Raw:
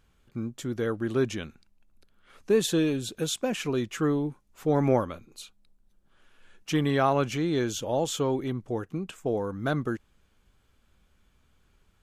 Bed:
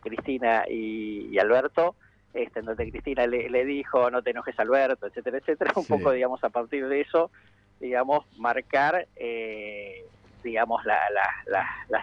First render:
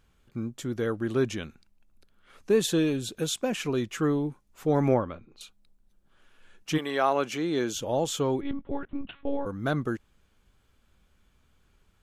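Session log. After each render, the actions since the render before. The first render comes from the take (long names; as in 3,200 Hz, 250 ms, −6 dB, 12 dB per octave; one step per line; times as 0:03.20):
0:04.94–0:05.41: high-frequency loss of the air 250 metres
0:06.77–0:07.74: high-pass filter 500 Hz → 160 Hz
0:08.41–0:09.46: one-pitch LPC vocoder at 8 kHz 280 Hz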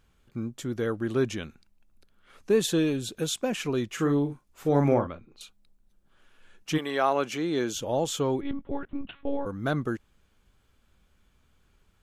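0:03.90–0:05.07: double-tracking delay 42 ms −7.5 dB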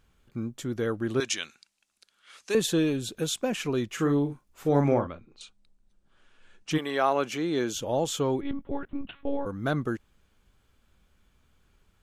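0:01.20–0:02.55: meter weighting curve ITU-R 468
0:04.81–0:06.71: elliptic low-pass filter 9,300 Hz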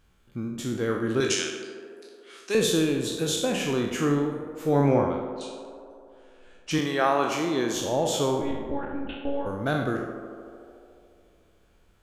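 peak hold with a decay on every bin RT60 0.66 s
on a send: tape delay 73 ms, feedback 90%, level −9 dB, low-pass 2,500 Hz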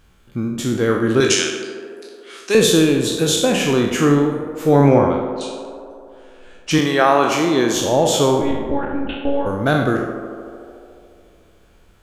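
level +9.5 dB
brickwall limiter −2 dBFS, peak gain reduction 2 dB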